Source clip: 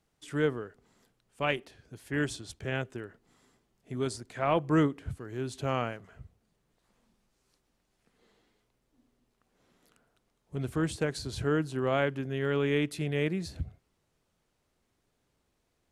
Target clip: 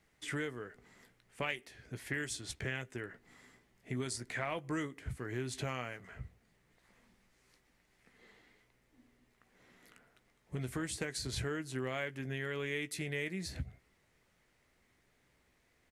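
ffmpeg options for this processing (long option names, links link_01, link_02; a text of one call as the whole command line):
ffmpeg -i in.wav -filter_complex "[0:a]equalizer=frequency=2000:width_type=o:width=0.58:gain=11,acrossover=split=4700[link_01][link_02];[link_01]acompressor=threshold=-38dB:ratio=6[link_03];[link_03][link_02]amix=inputs=2:normalize=0,asplit=2[link_04][link_05];[link_05]adelay=16,volume=-11dB[link_06];[link_04][link_06]amix=inputs=2:normalize=0,volume=2dB" out.wav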